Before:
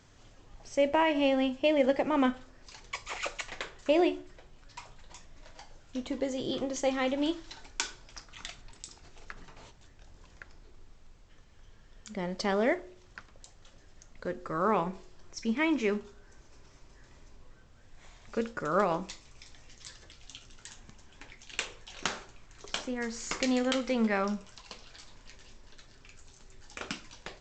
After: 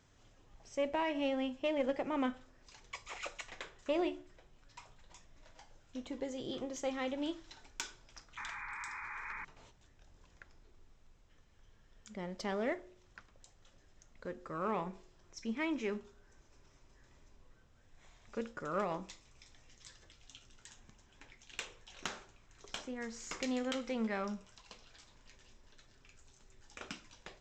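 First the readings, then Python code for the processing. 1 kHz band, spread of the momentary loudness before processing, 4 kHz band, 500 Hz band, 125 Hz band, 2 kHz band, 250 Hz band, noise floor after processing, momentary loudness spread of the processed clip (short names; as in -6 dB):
-8.0 dB, 22 LU, -8.5 dB, -8.5 dB, -7.5 dB, -7.5 dB, -8.0 dB, -65 dBFS, 22 LU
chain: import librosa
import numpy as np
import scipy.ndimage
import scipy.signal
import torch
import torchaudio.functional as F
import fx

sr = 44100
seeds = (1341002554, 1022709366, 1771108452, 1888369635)

y = fx.diode_clip(x, sr, knee_db=-15.5)
y = fx.notch(y, sr, hz=4500.0, q=15.0)
y = fx.spec_paint(y, sr, seeds[0], shape='noise', start_s=8.37, length_s=1.08, low_hz=820.0, high_hz=2500.0, level_db=-37.0)
y = y * librosa.db_to_amplitude(-7.5)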